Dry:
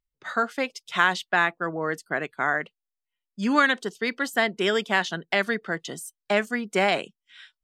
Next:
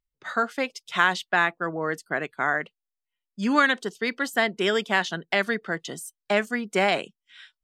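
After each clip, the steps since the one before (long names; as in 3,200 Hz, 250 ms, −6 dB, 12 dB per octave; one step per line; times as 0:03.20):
no processing that can be heard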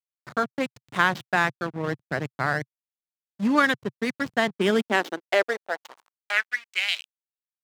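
slack as between gear wheels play −23.5 dBFS
high-pass filter sweep 130 Hz → 3,400 Hz, 0:04.35–0:07.00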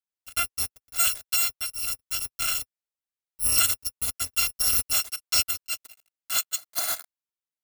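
samples in bit-reversed order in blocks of 256 samples
level −1.5 dB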